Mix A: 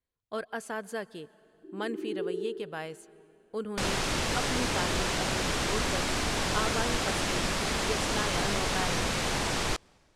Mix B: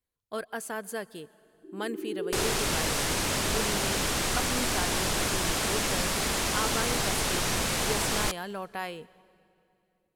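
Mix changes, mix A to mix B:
second sound: entry -1.45 s; master: remove air absorption 53 m

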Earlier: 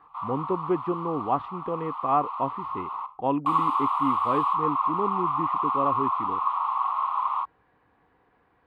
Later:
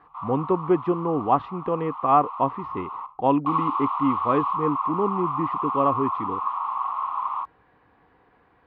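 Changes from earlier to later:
speech +5.0 dB; background: add air absorption 230 m

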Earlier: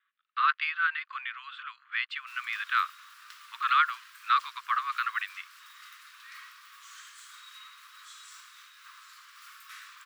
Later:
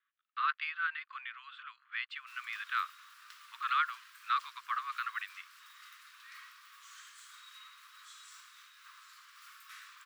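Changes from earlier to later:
speech -7.0 dB; background -4.5 dB

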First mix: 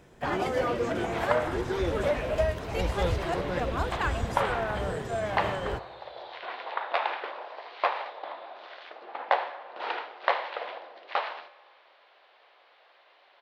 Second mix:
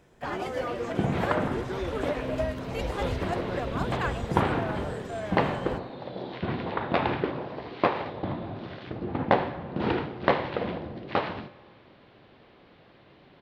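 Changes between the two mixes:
speech: send -7.5 dB; first sound -4.0 dB; second sound: remove HPF 620 Hz 24 dB/oct

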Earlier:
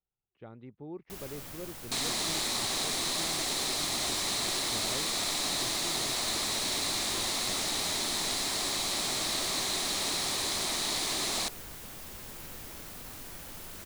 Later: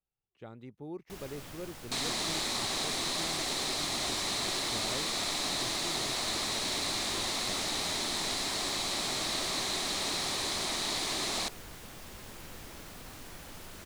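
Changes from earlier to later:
speech: remove air absorption 290 m; master: add high shelf 9600 Hz -10 dB

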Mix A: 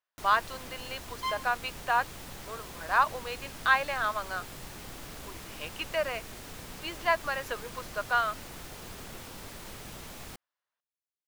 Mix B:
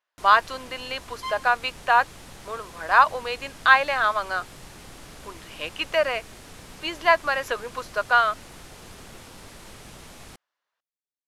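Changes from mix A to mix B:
speech +8.0 dB; master: add LPF 12000 Hz 24 dB/oct

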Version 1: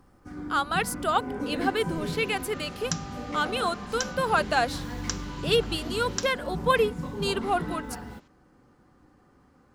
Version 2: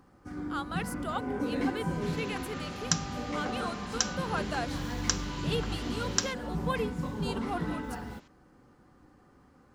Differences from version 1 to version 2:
speech -10.5 dB; second sound +3.5 dB

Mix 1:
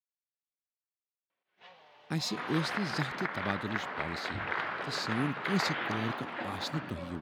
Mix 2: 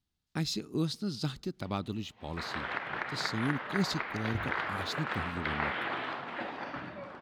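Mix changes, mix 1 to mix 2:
speech: entry -1.75 s; first sound -11.5 dB; master: remove HPF 95 Hz

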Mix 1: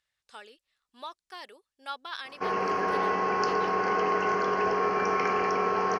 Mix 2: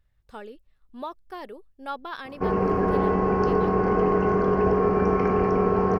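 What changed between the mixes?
speech +5.0 dB; master: remove weighting filter ITU-R 468

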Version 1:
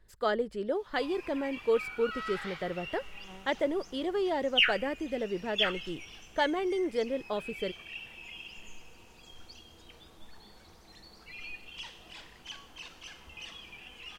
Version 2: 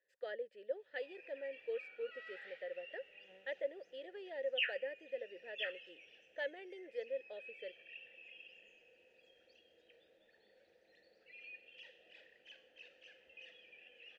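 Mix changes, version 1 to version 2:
speech: add HPF 830 Hz 6 dB/oct; master: add vowel filter e

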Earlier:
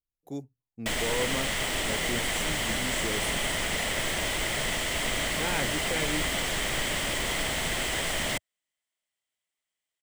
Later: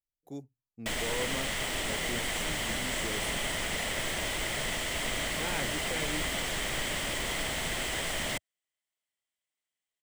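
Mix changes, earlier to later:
speech -5.0 dB; background -3.5 dB

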